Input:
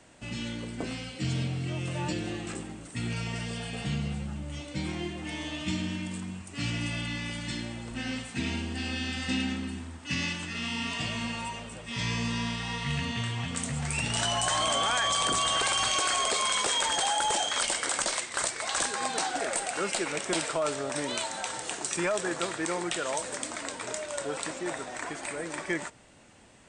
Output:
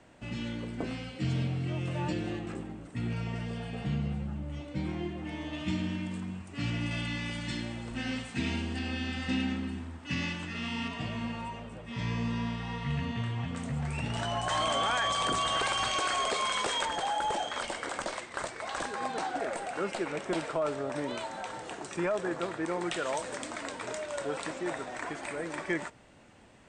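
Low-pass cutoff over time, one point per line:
low-pass 6 dB/octave
2.2 kHz
from 2.39 s 1.2 kHz
from 5.53 s 2.1 kHz
from 6.91 s 4.5 kHz
from 8.79 s 2.2 kHz
from 10.88 s 1.1 kHz
from 14.49 s 2.5 kHz
from 16.85 s 1.2 kHz
from 22.81 s 3 kHz

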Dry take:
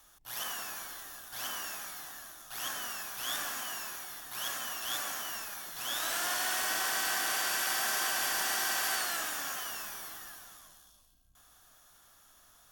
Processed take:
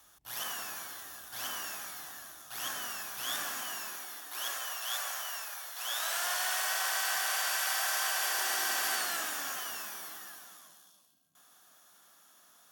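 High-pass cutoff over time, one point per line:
high-pass 24 dB/octave
2.81 s 47 Hz
3.87 s 140 Hz
4.79 s 520 Hz
8.11 s 520 Hz
9.02 s 160 Hz

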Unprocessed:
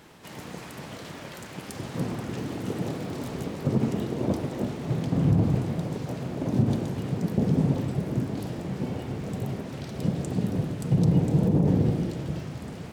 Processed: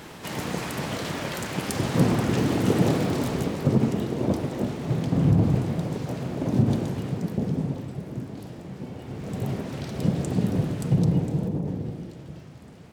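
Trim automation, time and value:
2.96 s +9.5 dB
3.95 s +2 dB
6.89 s +2 dB
7.81 s -6 dB
8.95 s -6 dB
9.48 s +3 dB
10.80 s +3 dB
11.78 s -9 dB

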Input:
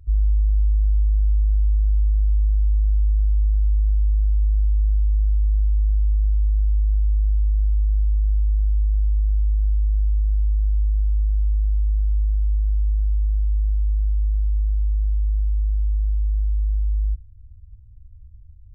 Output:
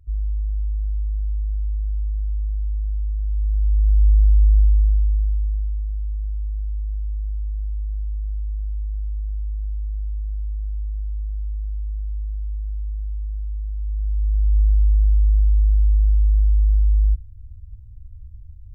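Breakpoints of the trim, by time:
3.20 s -5.5 dB
4.07 s +5 dB
4.59 s +5 dB
5.87 s -7 dB
13.73 s -7 dB
14.60 s +5 dB

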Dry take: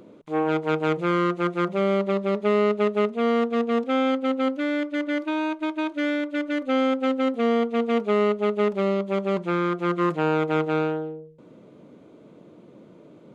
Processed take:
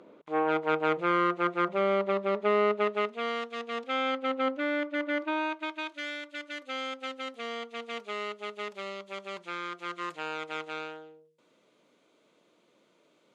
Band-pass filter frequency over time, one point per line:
band-pass filter, Q 0.51
2.72 s 1.3 kHz
3.52 s 5.3 kHz
4.52 s 1.3 kHz
5.31 s 1.3 kHz
6.03 s 6.1 kHz

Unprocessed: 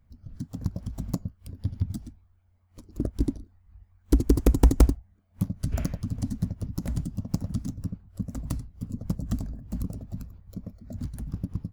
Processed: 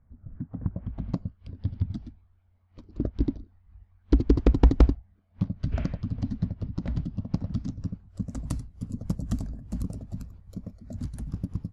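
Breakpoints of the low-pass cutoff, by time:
low-pass 24 dB/octave
0.69 s 1.8 kHz
1.19 s 4.3 kHz
7.42 s 4.3 kHz
8.50 s 11 kHz

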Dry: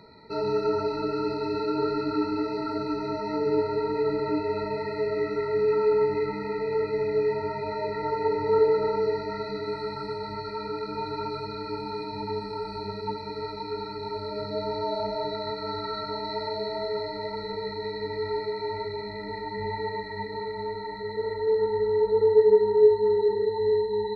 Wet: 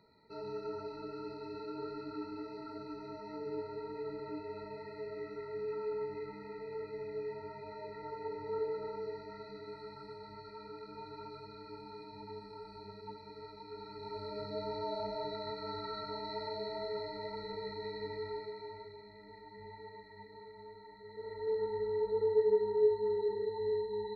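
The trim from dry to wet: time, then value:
13.66 s -15.5 dB
14.21 s -9 dB
18.07 s -9 dB
19.03 s -19 dB
21.02 s -19 dB
21.47 s -10.5 dB

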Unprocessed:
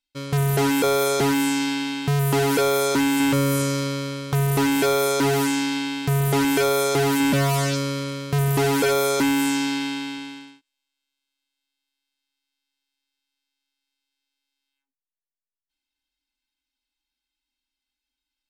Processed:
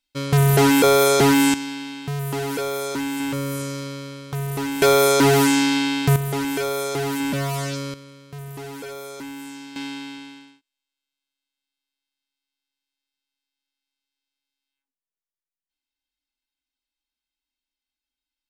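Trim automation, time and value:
+5 dB
from 1.54 s -6 dB
from 4.82 s +5 dB
from 6.16 s -4.5 dB
from 7.94 s -15 dB
from 9.76 s -4.5 dB

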